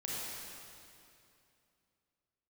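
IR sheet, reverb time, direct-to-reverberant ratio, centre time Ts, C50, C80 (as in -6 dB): 2.7 s, -6.5 dB, 0.18 s, -4.5 dB, -2.5 dB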